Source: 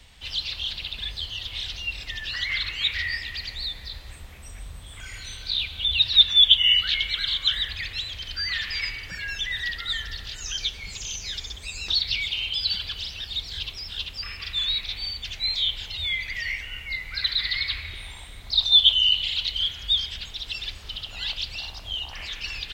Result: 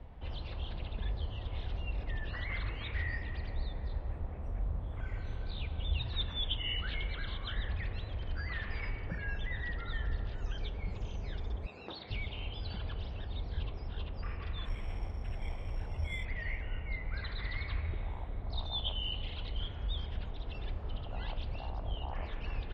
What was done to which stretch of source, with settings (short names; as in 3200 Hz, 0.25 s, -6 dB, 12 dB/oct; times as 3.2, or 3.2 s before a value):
11.66–12.11 BPF 230–6300 Hz
14.65–16.25 careless resampling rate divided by 8×, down filtered, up zero stuff
whole clip: Chebyshev low-pass 700 Hz, order 2; gain +5.5 dB